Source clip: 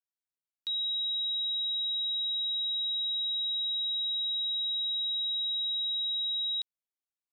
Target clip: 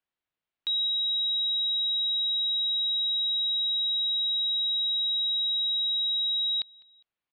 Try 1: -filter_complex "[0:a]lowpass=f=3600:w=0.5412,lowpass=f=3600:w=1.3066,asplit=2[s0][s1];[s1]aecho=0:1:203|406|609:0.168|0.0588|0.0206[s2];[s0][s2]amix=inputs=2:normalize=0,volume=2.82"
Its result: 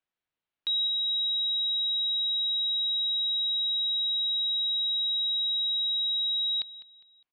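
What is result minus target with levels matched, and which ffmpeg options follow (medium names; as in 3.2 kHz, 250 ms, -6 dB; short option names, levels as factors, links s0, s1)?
echo-to-direct +7.5 dB
-filter_complex "[0:a]lowpass=f=3600:w=0.5412,lowpass=f=3600:w=1.3066,asplit=2[s0][s1];[s1]aecho=0:1:203|406:0.0708|0.0248[s2];[s0][s2]amix=inputs=2:normalize=0,volume=2.82"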